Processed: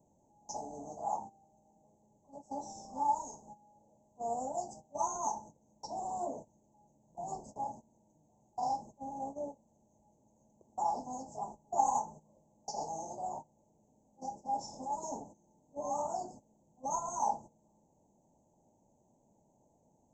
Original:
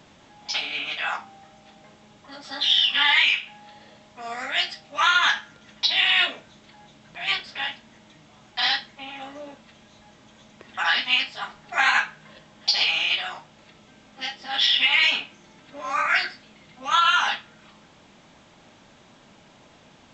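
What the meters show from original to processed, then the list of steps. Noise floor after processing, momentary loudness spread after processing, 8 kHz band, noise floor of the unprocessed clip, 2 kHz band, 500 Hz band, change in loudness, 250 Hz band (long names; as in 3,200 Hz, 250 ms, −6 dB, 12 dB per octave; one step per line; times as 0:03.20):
−71 dBFS, 14 LU, −2.5 dB, −53 dBFS, below −40 dB, −0.5 dB, −17.0 dB, −2.5 dB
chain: noise gate −39 dBFS, range −15 dB
Chebyshev band-stop filter 910–6,300 Hz, order 5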